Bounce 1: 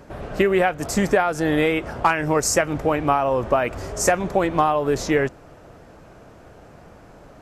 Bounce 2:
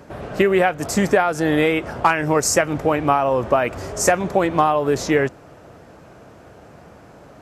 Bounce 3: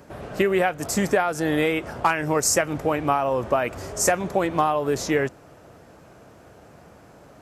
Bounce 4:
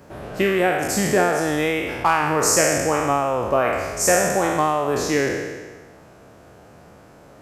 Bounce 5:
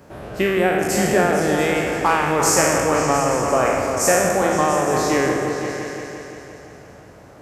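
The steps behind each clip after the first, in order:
high-pass 70 Hz; trim +2 dB
treble shelf 6.9 kHz +7 dB; trim -4.5 dB
spectral sustain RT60 1.39 s; trim -1 dB
delay with an opening low-pass 172 ms, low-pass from 400 Hz, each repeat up 2 oct, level -3 dB

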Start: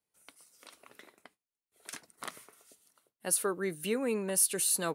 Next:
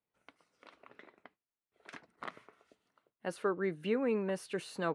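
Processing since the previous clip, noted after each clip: low-pass 2.3 kHz 12 dB/octave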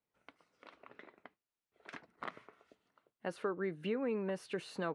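treble shelf 7.6 kHz -11 dB; compression 2:1, threshold -37 dBFS, peak gain reduction 6 dB; trim +1 dB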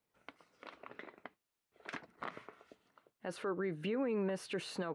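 peak limiter -33.5 dBFS, peak gain reduction 10 dB; trim +5 dB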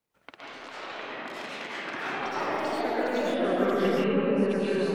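transient shaper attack +5 dB, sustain -7 dB; algorithmic reverb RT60 3.7 s, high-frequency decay 0.4×, pre-delay 90 ms, DRR -9.5 dB; ever faster or slower copies 111 ms, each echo +4 st, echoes 3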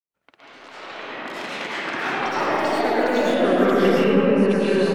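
fade-in on the opening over 1.62 s; on a send: feedback delay 107 ms, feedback 50%, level -11 dB; on the sum: trim +7.5 dB

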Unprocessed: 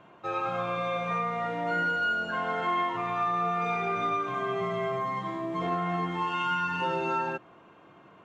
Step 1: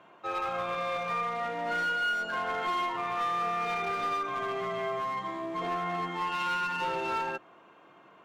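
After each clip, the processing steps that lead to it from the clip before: high-pass 390 Hz 6 dB/octave; one-sided clip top -29.5 dBFS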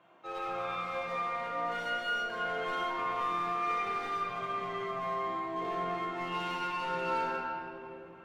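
reverberation RT60 3.3 s, pre-delay 6 ms, DRR -4 dB; trim -8.5 dB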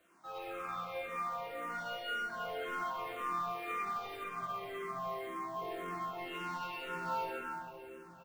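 companded quantiser 6-bit; delay 1170 ms -22.5 dB; barber-pole phaser -1.9 Hz; trim -2.5 dB

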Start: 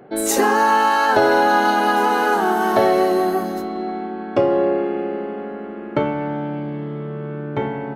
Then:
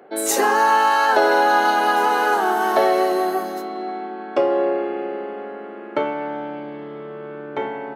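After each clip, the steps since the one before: high-pass 380 Hz 12 dB/octave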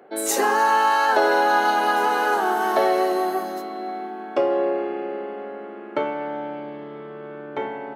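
plate-style reverb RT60 4.7 s, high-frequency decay 0.75×, DRR 19 dB; trim -2.5 dB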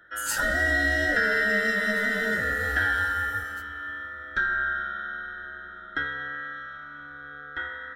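split-band scrambler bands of 1 kHz; trim -5.5 dB

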